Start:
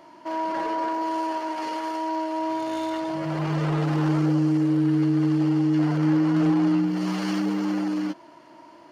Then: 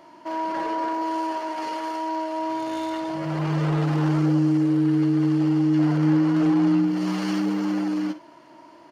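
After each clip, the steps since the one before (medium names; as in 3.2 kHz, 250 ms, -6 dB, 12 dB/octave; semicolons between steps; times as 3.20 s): early reflections 52 ms -15.5 dB, 65 ms -18 dB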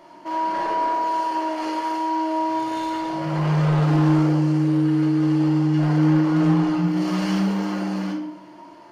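simulated room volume 140 m³, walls mixed, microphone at 0.9 m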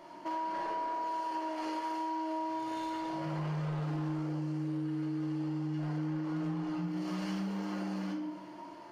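compression 5:1, threshold -30 dBFS, peak gain reduction 14.5 dB; trim -4 dB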